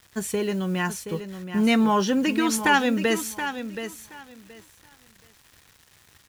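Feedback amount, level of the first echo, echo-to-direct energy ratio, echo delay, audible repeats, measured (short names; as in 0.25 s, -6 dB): 19%, -10.0 dB, -10.0 dB, 0.725 s, 2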